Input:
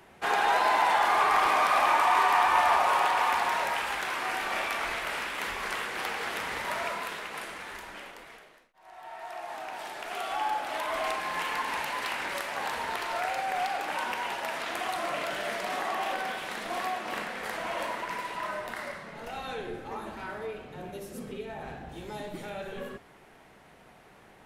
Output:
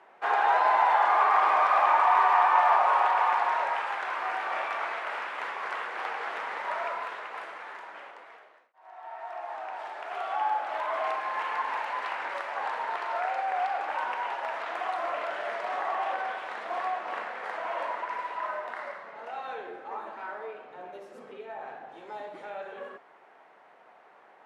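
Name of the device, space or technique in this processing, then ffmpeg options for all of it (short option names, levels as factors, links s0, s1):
through cloth: -af "highpass=790,lowpass=7800,highshelf=f=2100:g=-14,highshelf=f=2300:g=-9.5,volume=2.51"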